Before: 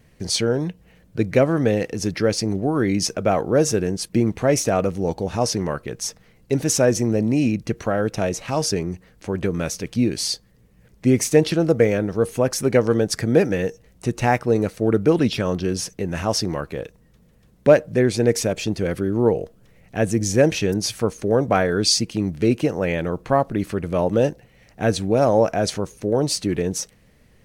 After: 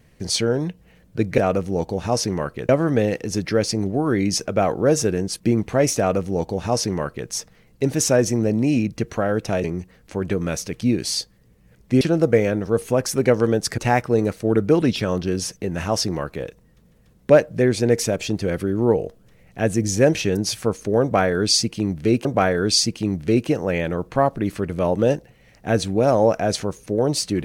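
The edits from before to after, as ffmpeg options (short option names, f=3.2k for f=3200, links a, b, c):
-filter_complex "[0:a]asplit=7[a][b][c][d][e][f][g];[a]atrim=end=1.382[h];[b]atrim=start=4.668:end=5.982[i];[c]atrim=start=1.378:end=8.332[j];[d]atrim=start=8.768:end=11.142[k];[e]atrim=start=11.478:end=13.252[l];[f]atrim=start=14.148:end=22.622[m];[g]atrim=start=21.388[n];[h][i]acrossfade=d=0.004:c1=hsin:c2=hsin[o];[o][j]acrossfade=d=0.004:c1=hsin:c2=hsin[p];[p][k]acrossfade=d=0.004:c1=hsin:c2=hsin[q];[q][l]acrossfade=d=0.004:c1=hsin:c2=hsin[r];[r][m]acrossfade=d=0.004:c1=hsin:c2=hsin[s];[s][n]acrossfade=d=0.004:c1=hsin:c2=hsin"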